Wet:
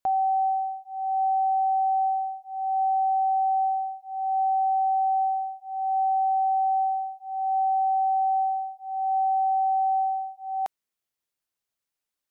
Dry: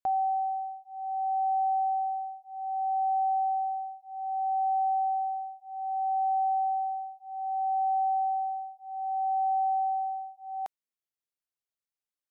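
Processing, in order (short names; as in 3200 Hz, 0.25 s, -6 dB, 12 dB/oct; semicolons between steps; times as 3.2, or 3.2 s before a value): limiter -26.5 dBFS, peak gain reduction 3 dB; gain +6.5 dB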